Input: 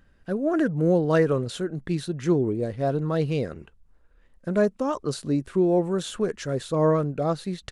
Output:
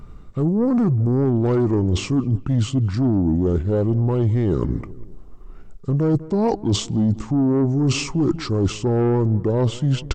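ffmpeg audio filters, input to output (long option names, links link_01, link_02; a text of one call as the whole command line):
ffmpeg -i in.wav -filter_complex "[0:a]bass=frequency=250:gain=1,treble=frequency=4000:gain=7,asetrate=33516,aresample=44100,tiltshelf=frequency=970:gain=7,asplit=2[link_01][link_02];[link_02]alimiter=limit=-14.5dB:level=0:latency=1,volume=-0.5dB[link_03];[link_01][link_03]amix=inputs=2:normalize=0,acontrast=84,asplit=2[link_04][link_05];[link_05]adelay=198,lowpass=frequency=2000:poles=1,volume=-23dB,asplit=2[link_06][link_07];[link_07]adelay=198,lowpass=frequency=2000:poles=1,volume=0.48,asplit=2[link_08][link_09];[link_09]adelay=198,lowpass=frequency=2000:poles=1,volume=0.48[link_10];[link_04][link_06][link_08][link_10]amix=inputs=4:normalize=0,areverse,acompressor=threshold=-17dB:ratio=6,areverse" out.wav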